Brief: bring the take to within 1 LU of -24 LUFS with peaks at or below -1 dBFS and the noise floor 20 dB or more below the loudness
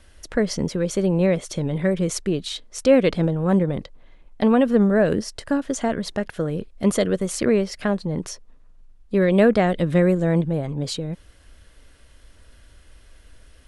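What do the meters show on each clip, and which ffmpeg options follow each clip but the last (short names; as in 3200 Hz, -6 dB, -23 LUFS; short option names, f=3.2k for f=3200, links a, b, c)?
loudness -21.5 LUFS; peak -5.0 dBFS; loudness target -24.0 LUFS
-> -af "volume=-2.5dB"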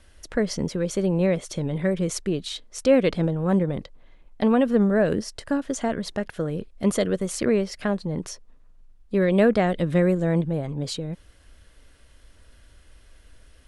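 loudness -24.0 LUFS; peak -7.5 dBFS; noise floor -53 dBFS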